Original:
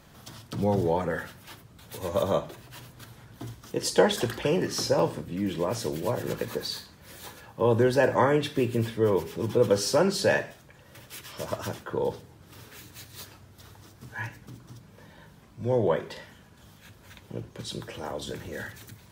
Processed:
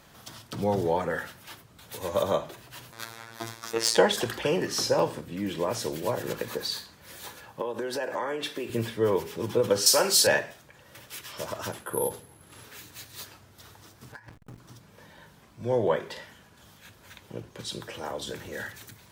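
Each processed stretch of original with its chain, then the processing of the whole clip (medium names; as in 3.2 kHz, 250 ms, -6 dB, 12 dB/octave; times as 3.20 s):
2.92–3.97 s: band-stop 3 kHz, Q 5.7 + overdrive pedal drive 19 dB, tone 6 kHz, clips at -14.5 dBFS + robot voice 114 Hz
7.61–8.70 s: high-pass 260 Hz + compression 10:1, threshold -27 dBFS
9.86–10.27 s: RIAA curve recording + flutter echo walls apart 8.3 m, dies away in 0.24 s
11.72–12.64 s: careless resampling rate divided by 4×, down filtered, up zero stuff + distance through air 67 m
14.12–14.58 s: high-order bell 3.7 kHz -9 dB 1.3 oct + hysteresis with a dead band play -38 dBFS + compressor with a negative ratio -42 dBFS, ratio -0.5
whole clip: bass shelf 340 Hz -7 dB; endings held to a fixed fall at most 270 dB/s; trim +2 dB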